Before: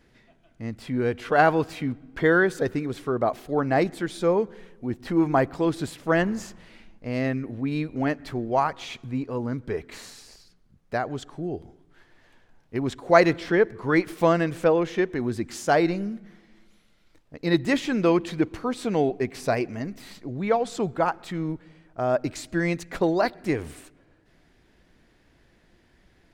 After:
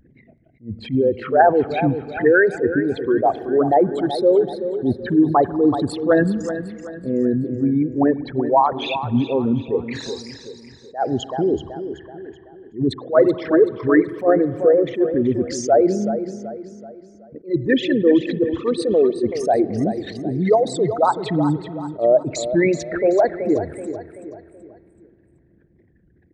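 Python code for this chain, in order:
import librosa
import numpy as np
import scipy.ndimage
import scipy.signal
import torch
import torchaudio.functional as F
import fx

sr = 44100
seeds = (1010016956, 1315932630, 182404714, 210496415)

p1 = fx.envelope_sharpen(x, sr, power=3.0)
p2 = scipy.signal.sosfilt(scipy.signal.butter(2, 86.0, 'highpass', fs=sr, output='sos'), p1)
p3 = fx.rider(p2, sr, range_db=10, speed_s=0.5)
p4 = p2 + F.gain(torch.from_numpy(p3), -1.0).numpy()
p5 = fx.wow_flutter(p4, sr, seeds[0], rate_hz=2.1, depth_cents=130.0)
p6 = p5 + fx.echo_feedback(p5, sr, ms=379, feedback_pct=42, wet_db=-11, dry=0)
p7 = fx.rev_spring(p6, sr, rt60_s=3.4, pass_ms=(47,), chirp_ms=65, drr_db=18.5)
p8 = fx.attack_slew(p7, sr, db_per_s=260.0)
y = F.gain(torch.from_numpy(p8), 1.5).numpy()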